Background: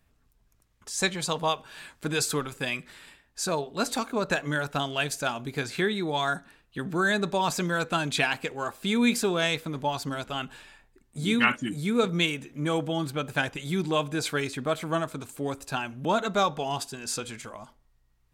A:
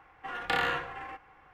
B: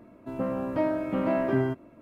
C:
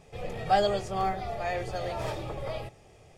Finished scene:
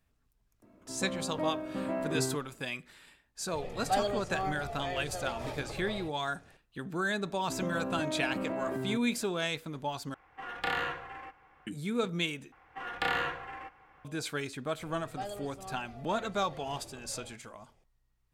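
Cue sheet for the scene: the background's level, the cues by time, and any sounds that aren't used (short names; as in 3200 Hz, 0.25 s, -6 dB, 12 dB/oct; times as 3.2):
background -7 dB
0.62 add B -8 dB
3.4 add C -6 dB
7.23 add B -3 dB + compressor, threshold -28 dBFS
10.14 replace with A -3.5 dB
12.52 replace with A -2 dB
14.67 add C -16 dB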